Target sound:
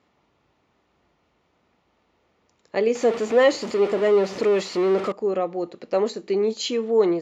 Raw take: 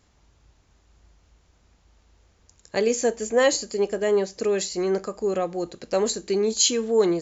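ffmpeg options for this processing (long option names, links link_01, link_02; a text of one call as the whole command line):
ffmpeg -i in.wav -filter_complex "[0:a]asettb=1/sr,asplit=3[link_01][link_02][link_03];[link_01]atrim=end=2.954[link_04];[link_02]atrim=start=2.95:end=5.12,asetpts=PTS-STARTPTS,afade=type=in:duration=0.004:curve=qsin,afade=type=out:start_time=2.166:duration=0.004:curve=qsin,aeval=exprs='val(0)+0.5*0.0596*sgn(val(0))':channel_layout=same[link_05];[link_03]atrim=start=5.116[link_06];[link_04][link_05]acrossfade=duration=0.004:curve1=hsin:curve2=qsin[link_07];[link_07][link_06]acrossfade=duration=0.004:curve1=qsin:curve2=hsin,highpass=200,lowpass=2800,bandreject=frequency=1600:width=9.1,volume=1.5dB" out.wav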